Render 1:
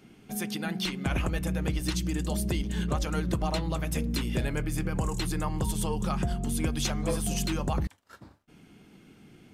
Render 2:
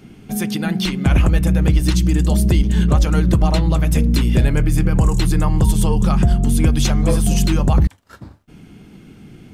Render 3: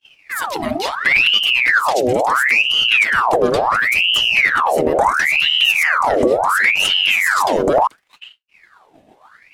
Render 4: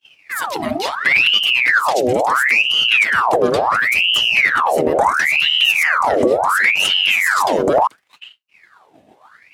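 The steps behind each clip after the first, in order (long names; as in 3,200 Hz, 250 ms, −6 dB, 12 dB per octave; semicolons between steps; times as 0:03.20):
low-shelf EQ 210 Hz +9.5 dB; level +8 dB
downward expander −34 dBFS; ring modulator whose carrier an LFO sweeps 1,700 Hz, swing 75%, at 0.72 Hz; level +1.5 dB
high-pass filter 73 Hz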